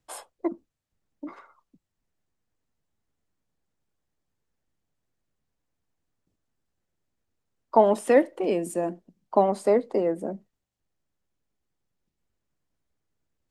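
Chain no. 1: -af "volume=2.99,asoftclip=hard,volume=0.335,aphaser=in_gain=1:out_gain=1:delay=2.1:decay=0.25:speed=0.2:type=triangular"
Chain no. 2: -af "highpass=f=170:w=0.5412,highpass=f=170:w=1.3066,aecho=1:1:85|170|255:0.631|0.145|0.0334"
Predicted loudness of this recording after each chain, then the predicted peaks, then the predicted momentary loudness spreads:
-24.5 LUFS, -23.0 LUFS; -8.0 dBFS, -5.0 dBFS; 20 LU, 19 LU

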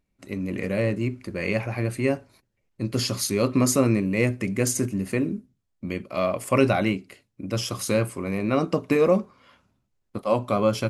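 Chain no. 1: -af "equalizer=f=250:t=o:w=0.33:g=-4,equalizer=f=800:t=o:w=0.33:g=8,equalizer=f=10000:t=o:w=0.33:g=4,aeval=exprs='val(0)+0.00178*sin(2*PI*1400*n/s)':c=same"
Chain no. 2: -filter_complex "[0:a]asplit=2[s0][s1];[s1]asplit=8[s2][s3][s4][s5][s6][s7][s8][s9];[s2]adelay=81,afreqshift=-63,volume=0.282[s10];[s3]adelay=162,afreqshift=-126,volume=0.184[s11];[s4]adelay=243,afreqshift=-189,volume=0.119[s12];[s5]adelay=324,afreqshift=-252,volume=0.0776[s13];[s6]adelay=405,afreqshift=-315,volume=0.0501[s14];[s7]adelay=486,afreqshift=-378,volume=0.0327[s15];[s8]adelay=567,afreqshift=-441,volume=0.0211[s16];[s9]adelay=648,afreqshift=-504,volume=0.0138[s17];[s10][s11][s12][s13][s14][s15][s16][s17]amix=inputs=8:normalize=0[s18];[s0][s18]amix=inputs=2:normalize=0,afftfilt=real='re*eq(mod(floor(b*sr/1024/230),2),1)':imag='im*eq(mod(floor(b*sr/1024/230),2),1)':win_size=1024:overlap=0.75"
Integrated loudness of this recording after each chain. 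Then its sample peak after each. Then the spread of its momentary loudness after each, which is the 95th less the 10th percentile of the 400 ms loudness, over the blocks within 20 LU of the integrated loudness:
-25.0 LUFS, -29.0 LUFS; -7.0 dBFS, -8.5 dBFS; 12 LU, 16 LU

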